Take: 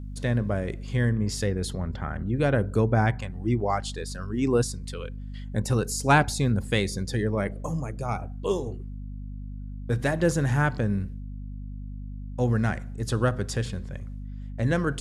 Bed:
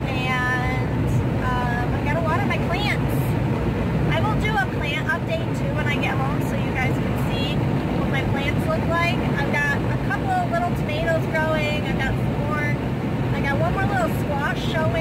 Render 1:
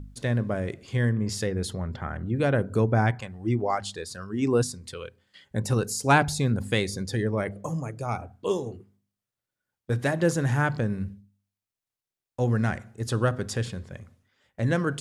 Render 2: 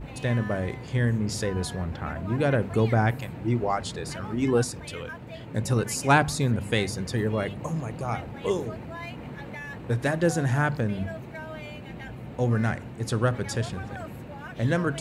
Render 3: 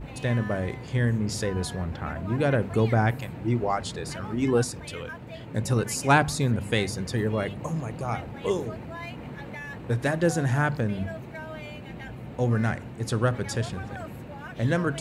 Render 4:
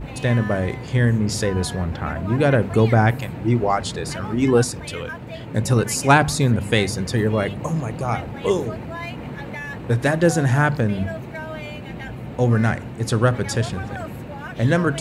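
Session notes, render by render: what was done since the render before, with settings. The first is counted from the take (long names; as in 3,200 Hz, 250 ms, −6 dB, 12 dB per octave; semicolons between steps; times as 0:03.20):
hum removal 50 Hz, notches 5
mix in bed −17 dB
no processing that can be heard
level +6.5 dB; brickwall limiter −3 dBFS, peak gain reduction 3 dB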